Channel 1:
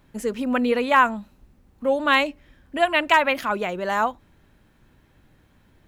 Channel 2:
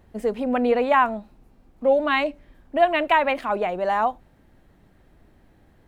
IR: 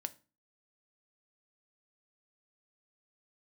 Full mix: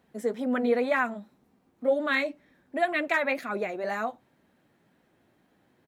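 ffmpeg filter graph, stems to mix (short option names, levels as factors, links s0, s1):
-filter_complex "[0:a]volume=0.473[s0];[1:a]adelay=0.7,volume=0.668[s1];[s0][s1]amix=inputs=2:normalize=0,highpass=170,flanger=delay=4:depth=4.5:regen=-48:speed=2:shape=sinusoidal"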